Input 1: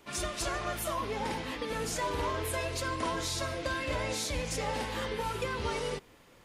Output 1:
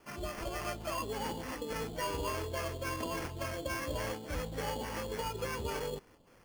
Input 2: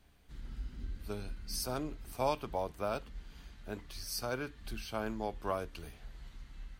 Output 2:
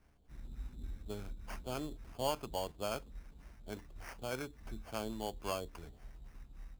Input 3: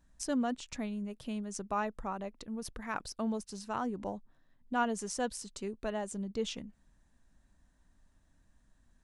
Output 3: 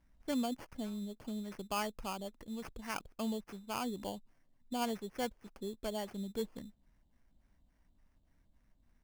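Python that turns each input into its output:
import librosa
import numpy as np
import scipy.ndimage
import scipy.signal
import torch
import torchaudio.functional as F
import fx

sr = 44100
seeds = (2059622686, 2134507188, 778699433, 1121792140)

y = fx.filter_lfo_lowpass(x, sr, shape='sine', hz=3.5, low_hz=590.0, high_hz=7700.0, q=0.87)
y = fx.sample_hold(y, sr, seeds[0], rate_hz=3800.0, jitter_pct=0)
y = y * librosa.db_to_amplitude(-3.0)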